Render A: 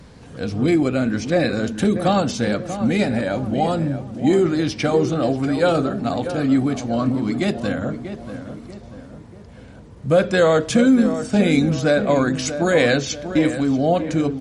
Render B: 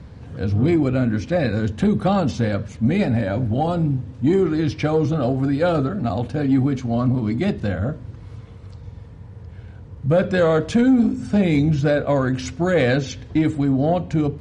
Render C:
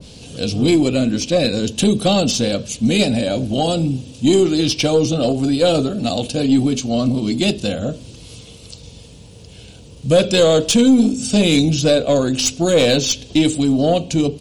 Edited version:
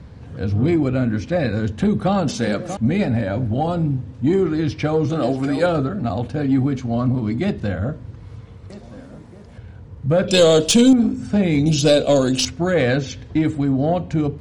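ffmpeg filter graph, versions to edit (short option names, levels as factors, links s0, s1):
-filter_complex "[0:a]asplit=3[s0][s1][s2];[2:a]asplit=2[s3][s4];[1:a]asplit=6[s5][s6][s7][s8][s9][s10];[s5]atrim=end=2.282[s11];[s0]atrim=start=2.278:end=2.772[s12];[s6]atrim=start=2.768:end=5.102[s13];[s1]atrim=start=5.098:end=5.662[s14];[s7]atrim=start=5.658:end=8.702[s15];[s2]atrim=start=8.698:end=9.582[s16];[s8]atrim=start=9.578:end=10.282[s17];[s3]atrim=start=10.278:end=10.932[s18];[s9]atrim=start=10.928:end=11.662[s19];[s4]atrim=start=11.658:end=12.452[s20];[s10]atrim=start=12.448[s21];[s11][s12]acrossfade=d=0.004:c1=hsin:c2=hsin[s22];[s22][s13]acrossfade=d=0.004:c1=hsin:c2=hsin[s23];[s23][s14]acrossfade=d=0.004:c1=hsin:c2=hsin[s24];[s24][s15]acrossfade=d=0.004:c1=hsin:c2=hsin[s25];[s25][s16]acrossfade=d=0.004:c1=hsin:c2=hsin[s26];[s26][s17]acrossfade=d=0.004:c1=hsin:c2=hsin[s27];[s27][s18]acrossfade=d=0.004:c1=hsin:c2=hsin[s28];[s28][s19]acrossfade=d=0.004:c1=hsin:c2=hsin[s29];[s29][s20]acrossfade=d=0.004:c1=hsin:c2=hsin[s30];[s30][s21]acrossfade=d=0.004:c1=hsin:c2=hsin"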